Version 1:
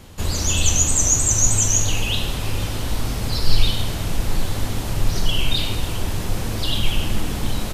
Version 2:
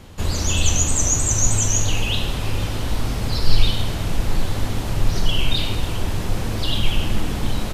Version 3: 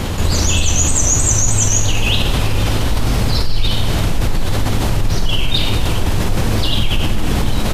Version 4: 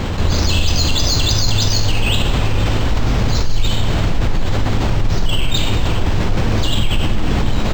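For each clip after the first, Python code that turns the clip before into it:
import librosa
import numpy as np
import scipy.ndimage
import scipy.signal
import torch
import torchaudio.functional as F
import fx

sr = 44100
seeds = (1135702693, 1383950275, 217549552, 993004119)

y1 = fx.high_shelf(x, sr, hz=5800.0, db=-6.5)
y1 = y1 * 10.0 ** (1.0 / 20.0)
y2 = fx.env_flatten(y1, sr, amount_pct=70)
y2 = y2 * 10.0 ** (-4.0 / 20.0)
y3 = np.interp(np.arange(len(y2)), np.arange(len(y2))[::4], y2[::4])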